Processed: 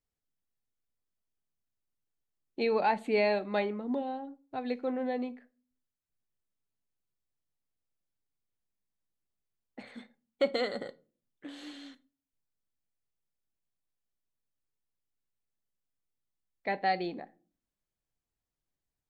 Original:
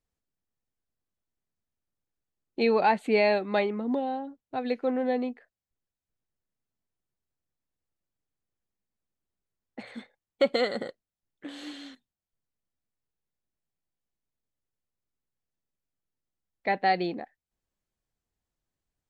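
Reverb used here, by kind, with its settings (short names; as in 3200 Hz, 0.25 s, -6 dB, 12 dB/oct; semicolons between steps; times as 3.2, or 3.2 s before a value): shoebox room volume 240 m³, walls furnished, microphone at 0.33 m; gain -5 dB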